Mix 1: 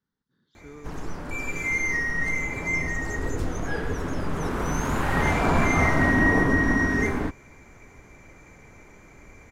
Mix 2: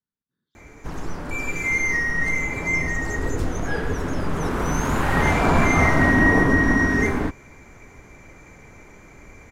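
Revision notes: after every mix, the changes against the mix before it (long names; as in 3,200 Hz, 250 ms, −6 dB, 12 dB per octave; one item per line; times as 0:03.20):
speech −11.0 dB
background +3.5 dB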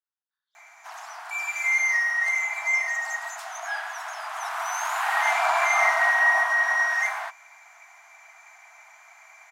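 master: add linear-phase brick-wall high-pass 630 Hz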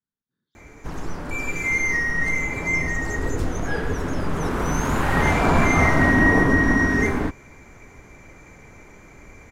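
master: remove linear-phase brick-wall high-pass 630 Hz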